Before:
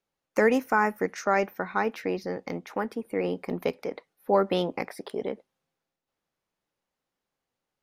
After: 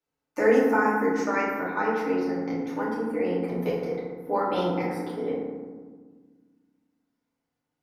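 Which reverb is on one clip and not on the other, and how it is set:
feedback delay network reverb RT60 1.5 s, low-frequency decay 1.55×, high-frequency decay 0.4×, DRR −9 dB
level −9 dB

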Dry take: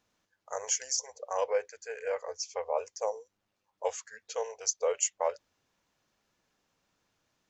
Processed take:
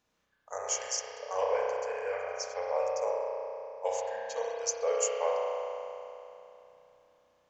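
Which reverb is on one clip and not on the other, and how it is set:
spring reverb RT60 3 s, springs 32 ms, chirp 35 ms, DRR −4 dB
level −2.5 dB

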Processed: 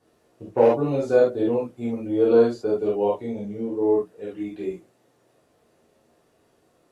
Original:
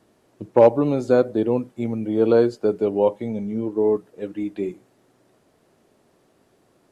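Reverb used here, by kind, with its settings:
reverb whose tail is shaped and stops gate 90 ms flat, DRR −6.5 dB
level −9 dB

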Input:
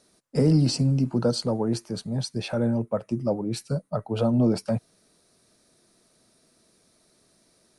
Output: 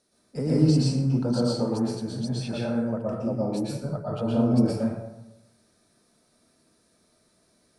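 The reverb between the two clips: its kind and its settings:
dense smooth reverb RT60 0.95 s, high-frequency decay 0.5×, pre-delay 105 ms, DRR −6.5 dB
level −8.5 dB

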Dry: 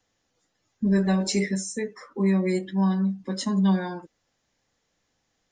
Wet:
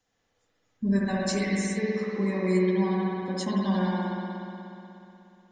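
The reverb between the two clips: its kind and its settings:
spring reverb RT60 3 s, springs 60 ms, chirp 60 ms, DRR −5 dB
level −4.5 dB

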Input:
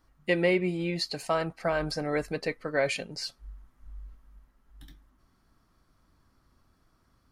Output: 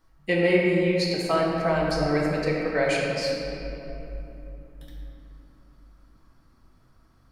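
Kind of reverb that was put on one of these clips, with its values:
rectangular room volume 160 cubic metres, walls hard, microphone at 0.65 metres

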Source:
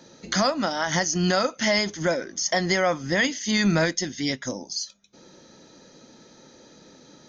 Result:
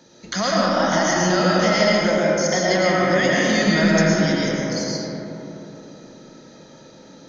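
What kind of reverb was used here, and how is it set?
comb and all-pass reverb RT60 3.7 s, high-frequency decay 0.35×, pre-delay 70 ms, DRR −6 dB
level −1.5 dB

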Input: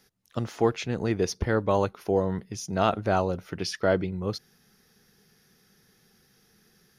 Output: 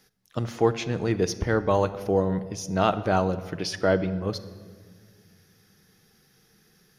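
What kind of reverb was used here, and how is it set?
rectangular room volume 2,300 cubic metres, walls mixed, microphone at 0.52 metres
level +1 dB

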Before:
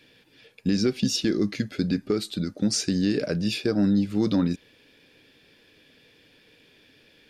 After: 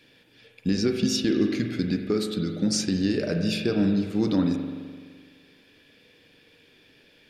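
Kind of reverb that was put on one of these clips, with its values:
spring reverb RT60 1.7 s, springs 42 ms, chirp 55 ms, DRR 4 dB
level −1 dB

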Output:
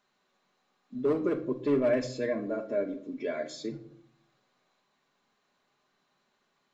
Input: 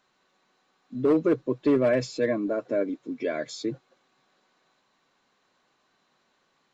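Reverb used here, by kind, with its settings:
rectangular room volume 830 cubic metres, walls furnished, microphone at 1.3 metres
level −6 dB

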